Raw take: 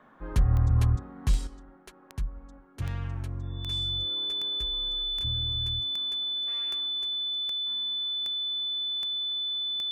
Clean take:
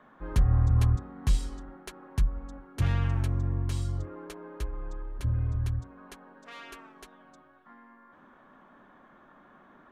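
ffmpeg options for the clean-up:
-af "adeclick=t=4,bandreject=f=3.5k:w=30,asetnsamples=n=441:p=0,asendcmd='1.47 volume volume 6.5dB',volume=0dB"

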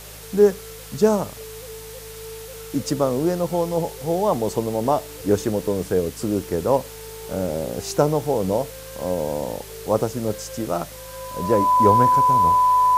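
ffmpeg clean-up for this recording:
-af "adeclick=t=4,bandreject=f=52.9:t=h:w=4,bandreject=f=105.8:t=h:w=4,bandreject=f=158.7:t=h:w=4,bandreject=f=1k:w=30,afwtdn=0.01"

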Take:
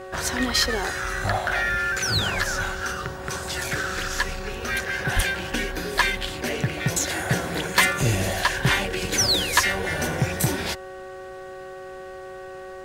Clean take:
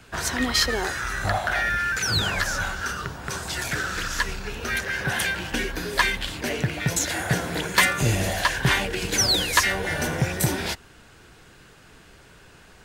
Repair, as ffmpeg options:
-filter_complex "[0:a]bandreject=f=375.7:t=h:w=4,bandreject=f=751.4:t=h:w=4,bandreject=f=1.1271k:t=h:w=4,bandreject=f=1.5028k:t=h:w=4,bandreject=f=1.8785k:t=h:w=4,bandreject=f=550:w=30,asplit=3[a][b][c];[a]afade=t=out:st=5.15:d=0.02[d];[b]highpass=f=140:w=0.5412,highpass=f=140:w=1.3066,afade=t=in:st=5.15:d=0.02,afade=t=out:st=5.27:d=0.02[e];[c]afade=t=in:st=5.27:d=0.02[f];[d][e][f]amix=inputs=3:normalize=0"

